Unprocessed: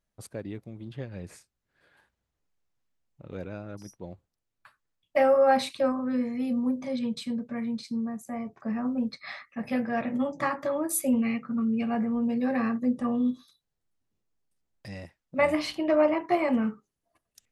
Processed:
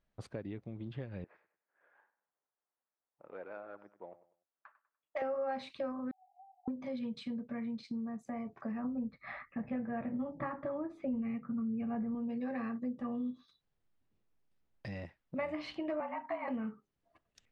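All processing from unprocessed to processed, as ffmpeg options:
ffmpeg -i in.wav -filter_complex "[0:a]asettb=1/sr,asplit=3[link_01][link_02][link_03];[link_01]atrim=end=1.244[link_04];[link_02]atrim=start=1.24:end=5.22,asetpts=PTS-STARTPTS,afade=type=in:duration=0.004:curve=qsin,afade=type=out:start_time=3.976:duration=0.004:curve=qsin,highpass=730,lowpass=2500,adynamicsmooth=sensitivity=3.5:basefreq=1500,aecho=1:1:98|196|294:0.178|0.0569|0.0182,atrim=end_sample=175518[link_05];[link_03]atrim=start=5.216[link_06];[link_04][link_05]acrossfade=duration=0.004:curve1=hsin:curve2=qsin[link_07];[link_07][link_06]acrossfade=duration=0.004:curve1=qsin:curve2=hsin,asettb=1/sr,asplit=3[link_08][link_09][link_10];[link_08]atrim=end=6.114[link_11];[link_09]atrim=start=6.11:end=6.68,asetpts=PTS-STARTPTS,afade=type=in:duration=0.004:curve=qsin,afade=type=out:start_time=0.566:duration=0.004:curve=qsin,aeval=exprs='val(0)+0.5*0.00841*sgn(val(0))':channel_layout=same,asuperpass=centerf=780:order=12:qfactor=8[link_12];[link_10]atrim=start=6.676[link_13];[link_11][link_12]acrossfade=duration=0.004:curve1=hsin:curve2=qsin[link_14];[link_14][link_13]acrossfade=duration=0.004:curve1=qsin:curve2=hsin,asettb=1/sr,asplit=3[link_15][link_16][link_17];[link_15]atrim=end=8.844[link_18];[link_16]atrim=start=8.84:end=12.15,asetpts=PTS-STARTPTS,afade=type=in:duration=0.004:curve=qsin,afade=type=out:start_time=3.306:duration=0.004:curve=qsin,lowpass=1900,lowshelf=frequency=170:gain=11[link_19];[link_17]atrim=start=12.146[link_20];[link_18][link_19]acrossfade=duration=0.004:curve1=hsin:curve2=qsin[link_21];[link_21][link_20]acrossfade=duration=0.004:curve1=qsin:curve2=hsin,asettb=1/sr,asplit=3[link_22][link_23][link_24];[link_22]atrim=end=16.004[link_25];[link_23]atrim=start=16:end=16.48,asetpts=PTS-STARTPTS,afade=type=in:duration=0.004:curve=qsin,afade=type=out:start_time=0.476:duration=0.004:curve=qsin,highpass=150,lowpass=2600,lowshelf=frequency=660:width_type=q:width=3:gain=-7.5,afreqshift=-50[link_26];[link_24]atrim=start=16.476[link_27];[link_25][link_26]acrossfade=duration=0.004:curve1=hsin:curve2=qsin[link_28];[link_28][link_27]acrossfade=duration=0.004:curve1=qsin:curve2=hsin,acompressor=threshold=-42dB:ratio=3,lowpass=3400,volume=2dB" out.wav

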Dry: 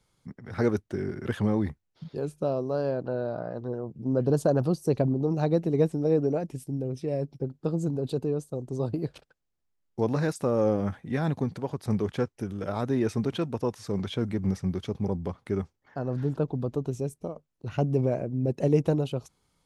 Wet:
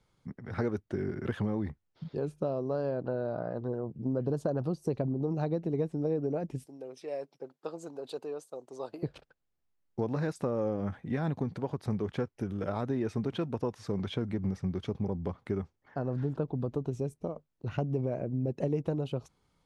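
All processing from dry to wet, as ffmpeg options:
ffmpeg -i in.wav -filter_complex "[0:a]asettb=1/sr,asplit=3[link_01][link_02][link_03];[link_01]atrim=end=6.664[link_04];[link_02]atrim=start=6.66:end=9.03,asetpts=PTS-STARTPTS,afade=type=in:duration=0.004:curve=qsin,afade=type=out:start_time=2.366:duration=0.004:curve=qsin,highpass=670,highshelf=frequency=5800:gain=4.5[link_05];[link_03]atrim=start=9.026[link_06];[link_04][link_05]acrossfade=duration=0.004:curve1=hsin:curve2=qsin[link_07];[link_07][link_06]acrossfade=duration=0.004:curve1=qsin:curve2=hsin,lowpass=frequency=3200:poles=1,acompressor=threshold=-28dB:ratio=4" out.wav

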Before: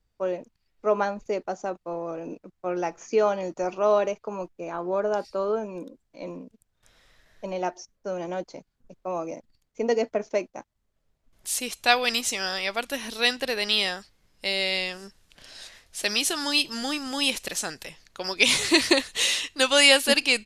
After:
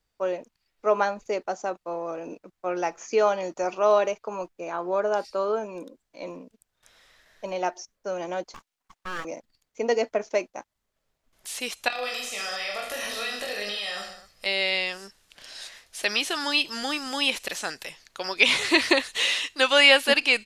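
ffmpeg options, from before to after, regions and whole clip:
ffmpeg -i in.wav -filter_complex "[0:a]asettb=1/sr,asplit=3[link_01][link_02][link_03];[link_01]atrim=end=8.544[link_04];[link_02]atrim=start=8.54:end=9.25,asetpts=PTS-STARTPTS,afade=type=in:duration=0.004:curve=qsin,afade=type=out:start_time=0.706:duration=0.004:curve=qsin,highpass=frequency=380:width=0.5412,highpass=frequency=380:width=1.3066,aeval=exprs='abs(val(0))':channel_layout=same[link_05];[link_03]atrim=start=9.246[link_06];[link_04][link_05]acrossfade=duration=0.004:curve1=hsin:curve2=qsin[link_07];[link_07][link_06]acrossfade=duration=0.004:curve1=qsin:curve2=hsin,asettb=1/sr,asplit=3[link_08][link_09][link_10];[link_08]atrim=end=11.884[link_11];[link_09]atrim=start=11.88:end=14.46,asetpts=PTS-STARTPTS,afade=type=in:duration=0.004:curve=qsin,afade=type=out:start_time=2.576:duration=0.004:curve=qsin,aecho=1:1:1.6:0.54,atrim=end_sample=113778,acompressor=threshold=-32dB:ratio=16:attack=3.2:release=140:knee=1:detection=peak,aecho=1:1:20|44|72.8|107.4|148.8|198.6|258.3:0.794|0.631|0.501|0.398|0.316|0.251|0.2,atrim=end_sample=113778[link_12];[link_10]atrim=start=14.456[link_13];[link_11][link_12]acrossfade=duration=0.004:curve1=hsin:curve2=qsin[link_14];[link_14][link_13]acrossfade=duration=0.004:curve1=qsin:curve2=hsin,acrossover=split=3600[link_15][link_16];[link_16]acompressor=threshold=-38dB:ratio=4:attack=1:release=60[link_17];[link_15][link_17]amix=inputs=2:normalize=0,lowshelf=frequency=310:gain=-11.5,volume=3.5dB" out.wav

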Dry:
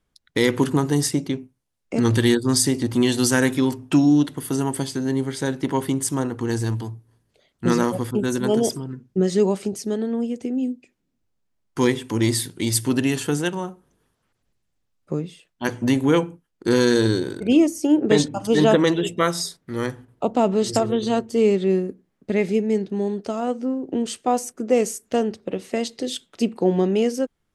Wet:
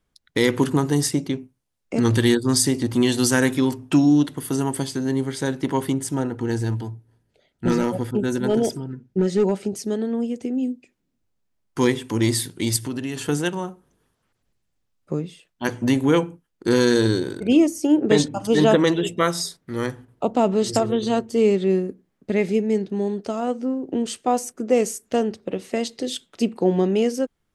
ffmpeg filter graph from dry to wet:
ffmpeg -i in.wav -filter_complex "[0:a]asettb=1/sr,asplit=3[link_01][link_02][link_03];[link_01]atrim=end=5.934[link_04];[link_02]atrim=start=5.93:end=9.72,asetpts=PTS-STARTPTS,afade=type=in:duration=0.004:curve=qsin,afade=type=out:start_time=3.786:duration=0.004:curve=qsin,asoftclip=type=hard:threshold=-12.5dB,asuperstop=centerf=1100:order=8:qfactor=5.9,highshelf=frequency=3700:gain=-6.5[link_05];[link_03]atrim=start=9.716[link_06];[link_04][link_05]acrossfade=duration=0.004:curve1=hsin:curve2=qsin[link_07];[link_07][link_06]acrossfade=duration=0.004:curve1=qsin:curve2=hsin,asettb=1/sr,asplit=3[link_08][link_09][link_10];[link_08]atrim=end=12.764[link_11];[link_09]atrim=start=12.76:end=13.29,asetpts=PTS-STARTPTS,afade=type=in:duration=0.004:curve=qsin,afade=type=out:start_time=0.526:duration=0.004:curve=qsin,highshelf=frequency=10000:gain=-5,acompressor=threshold=-26dB:ratio=3:attack=3.2:release=140:knee=1:detection=peak[link_12];[link_10]atrim=start=13.286[link_13];[link_11][link_12]acrossfade=duration=0.004:curve1=hsin:curve2=qsin[link_14];[link_14][link_13]acrossfade=duration=0.004:curve1=qsin:curve2=hsin" out.wav

